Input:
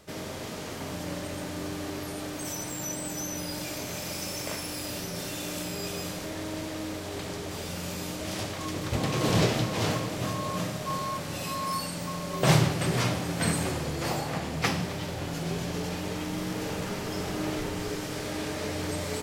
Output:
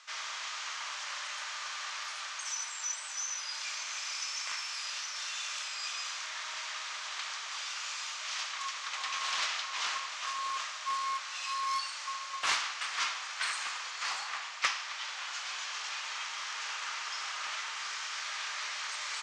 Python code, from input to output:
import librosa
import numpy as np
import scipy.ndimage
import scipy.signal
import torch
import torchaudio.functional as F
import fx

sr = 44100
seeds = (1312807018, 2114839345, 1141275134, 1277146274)

p1 = scipy.signal.sosfilt(scipy.signal.ellip(3, 1.0, 60, [1100.0, 6700.0], 'bandpass', fs=sr, output='sos'), x)
p2 = fx.rider(p1, sr, range_db=10, speed_s=0.5)
p3 = p1 + (p2 * 10.0 ** (-0.5 / 20.0))
p4 = fx.doppler_dist(p3, sr, depth_ms=0.14)
y = p4 * 10.0 ** (-4.0 / 20.0)